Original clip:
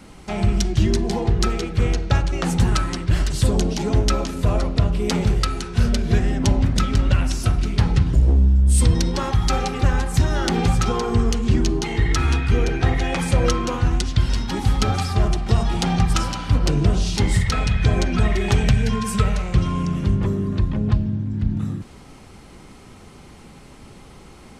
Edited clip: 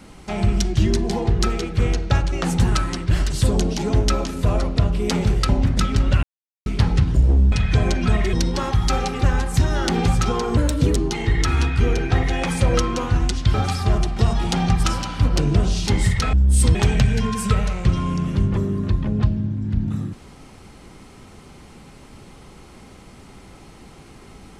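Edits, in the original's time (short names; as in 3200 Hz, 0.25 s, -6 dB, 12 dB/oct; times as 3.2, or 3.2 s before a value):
5.49–6.48 cut
7.22–7.65 mute
8.51–8.93 swap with 17.63–18.44
11.17–11.67 speed 128%
14.25–14.84 cut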